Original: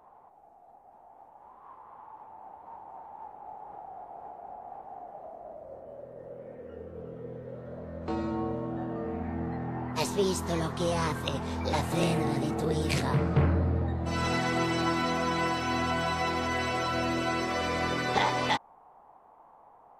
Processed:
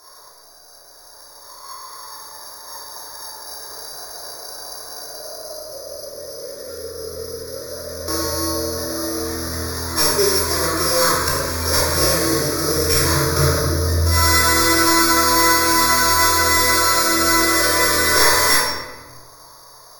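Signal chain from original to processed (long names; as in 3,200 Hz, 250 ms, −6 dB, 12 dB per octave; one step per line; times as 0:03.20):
samples sorted by size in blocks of 8 samples
tilt shelving filter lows −8 dB, about 1,100 Hz
sine wavefolder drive 8 dB, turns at −4 dBFS
phaser with its sweep stopped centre 790 Hz, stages 6
rectangular room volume 820 cubic metres, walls mixed, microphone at 3.1 metres
level −2 dB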